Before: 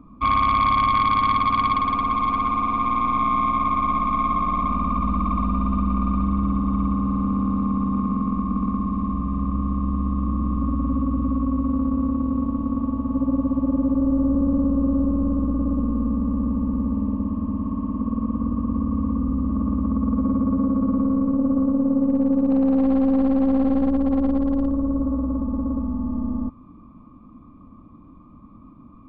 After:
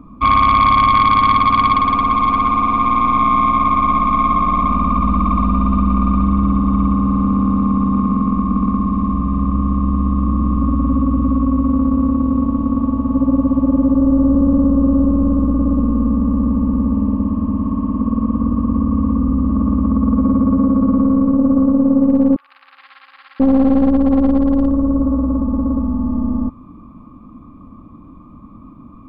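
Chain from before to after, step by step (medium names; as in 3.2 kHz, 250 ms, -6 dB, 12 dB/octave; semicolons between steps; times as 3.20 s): 13.87–15.06 s: band-stop 2.3 kHz, Q 13; 22.36–23.40 s: inverse Chebyshev high-pass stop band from 460 Hz, stop band 60 dB; trim +7 dB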